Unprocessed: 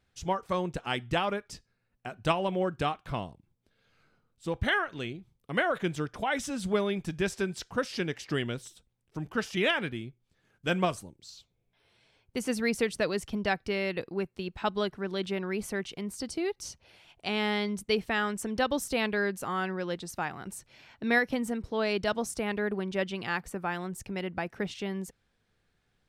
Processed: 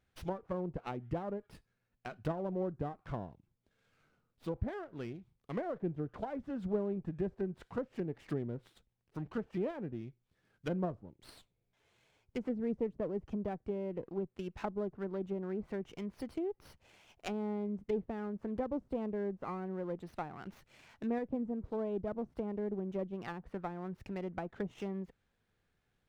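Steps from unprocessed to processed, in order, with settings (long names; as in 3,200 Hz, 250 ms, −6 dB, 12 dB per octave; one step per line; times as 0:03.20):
treble cut that deepens with the level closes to 530 Hz, closed at −27.5 dBFS
windowed peak hold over 5 samples
level −4.5 dB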